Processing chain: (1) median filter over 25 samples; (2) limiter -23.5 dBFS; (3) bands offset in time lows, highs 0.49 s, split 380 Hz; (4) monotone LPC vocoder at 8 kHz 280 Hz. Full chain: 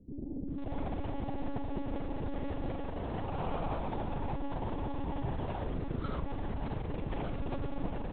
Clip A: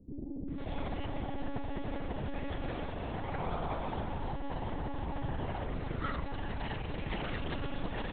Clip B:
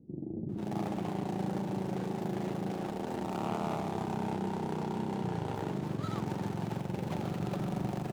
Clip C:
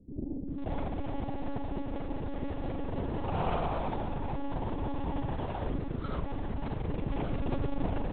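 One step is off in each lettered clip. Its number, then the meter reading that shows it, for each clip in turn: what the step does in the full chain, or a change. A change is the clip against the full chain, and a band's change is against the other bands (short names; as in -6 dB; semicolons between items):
1, 4 kHz band +7.0 dB; 4, 250 Hz band +1.5 dB; 2, mean gain reduction 2.0 dB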